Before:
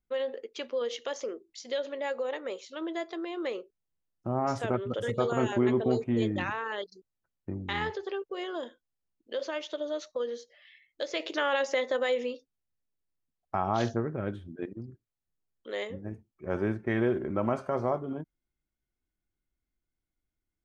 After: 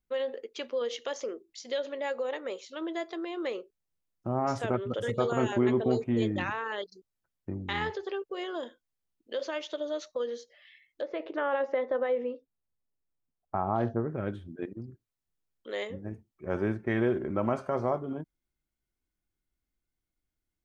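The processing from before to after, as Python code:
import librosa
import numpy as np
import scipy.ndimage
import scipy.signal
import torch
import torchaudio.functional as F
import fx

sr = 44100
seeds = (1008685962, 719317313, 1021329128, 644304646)

y = fx.lowpass(x, sr, hz=1300.0, slope=12, at=(11.01, 14.1))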